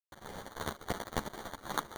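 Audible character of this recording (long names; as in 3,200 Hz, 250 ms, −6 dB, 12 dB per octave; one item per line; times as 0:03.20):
a quantiser's noise floor 8 bits, dither none
tremolo triangle 3.6 Hz, depth 80%
aliases and images of a low sample rate 2,600 Hz, jitter 0%
a shimmering, thickened sound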